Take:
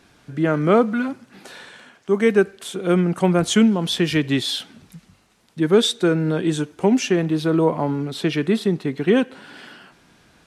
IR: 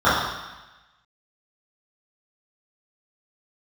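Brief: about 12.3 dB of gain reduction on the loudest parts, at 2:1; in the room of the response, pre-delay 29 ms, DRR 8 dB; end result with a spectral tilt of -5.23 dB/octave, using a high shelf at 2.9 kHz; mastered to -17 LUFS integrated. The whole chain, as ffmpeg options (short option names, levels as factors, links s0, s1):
-filter_complex "[0:a]highshelf=f=2900:g=-4,acompressor=threshold=0.02:ratio=2,asplit=2[s0][s1];[1:a]atrim=start_sample=2205,adelay=29[s2];[s1][s2]afir=irnorm=-1:irlink=0,volume=0.0224[s3];[s0][s3]amix=inputs=2:normalize=0,volume=4.47"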